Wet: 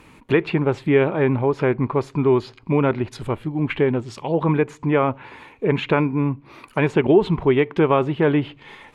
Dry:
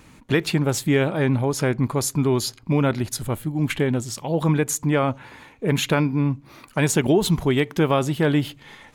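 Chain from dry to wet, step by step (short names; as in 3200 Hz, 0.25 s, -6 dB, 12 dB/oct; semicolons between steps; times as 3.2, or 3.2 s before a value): treble ducked by the level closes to 2400 Hz, closed at -19.5 dBFS; fifteen-band EQ 400 Hz +7 dB, 1000 Hz +6 dB, 2500 Hz +6 dB, 6300 Hz -5 dB; gain -1.5 dB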